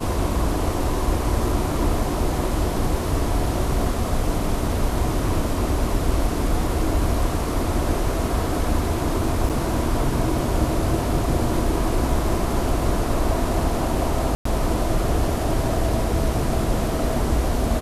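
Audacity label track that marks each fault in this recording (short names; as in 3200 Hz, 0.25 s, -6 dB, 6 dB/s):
9.490000	9.500000	gap 7.2 ms
14.350000	14.450000	gap 0.104 s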